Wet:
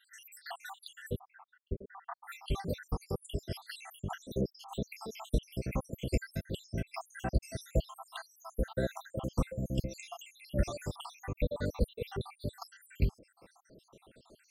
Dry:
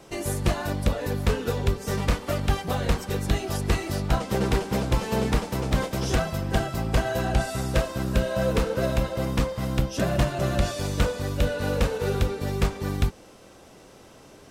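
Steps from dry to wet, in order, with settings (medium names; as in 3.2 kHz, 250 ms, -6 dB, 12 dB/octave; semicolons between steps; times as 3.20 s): random holes in the spectrogram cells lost 82%; 1.19–2.24 s: low-pass 1.3 kHz 24 dB/octave; loudspeaker Doppler distortion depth 0.11 ms; trim -5.5 dB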